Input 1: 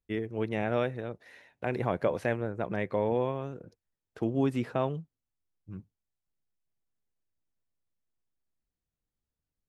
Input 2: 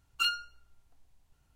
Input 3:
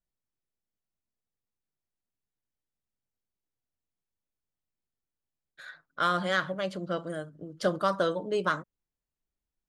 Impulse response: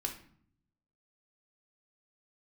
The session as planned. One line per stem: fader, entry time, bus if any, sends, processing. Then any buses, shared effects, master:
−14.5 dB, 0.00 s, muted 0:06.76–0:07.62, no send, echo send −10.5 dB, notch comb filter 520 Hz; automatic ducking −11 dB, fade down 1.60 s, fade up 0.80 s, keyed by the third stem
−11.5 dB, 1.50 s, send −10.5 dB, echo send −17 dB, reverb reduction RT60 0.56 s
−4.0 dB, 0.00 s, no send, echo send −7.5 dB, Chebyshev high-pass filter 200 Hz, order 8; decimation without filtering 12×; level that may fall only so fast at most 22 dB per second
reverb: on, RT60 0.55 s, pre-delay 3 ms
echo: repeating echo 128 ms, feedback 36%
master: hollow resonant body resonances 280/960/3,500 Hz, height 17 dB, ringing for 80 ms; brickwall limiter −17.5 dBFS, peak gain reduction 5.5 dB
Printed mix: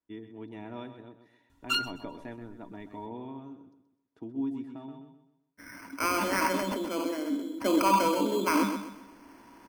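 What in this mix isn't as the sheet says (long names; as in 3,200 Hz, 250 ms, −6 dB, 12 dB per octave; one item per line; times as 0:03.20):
stem 2 −11.5 dB → −1.0 dB
master: missing brickwall limiter −17.5 dBFS, peak gain reduction 5.5 dB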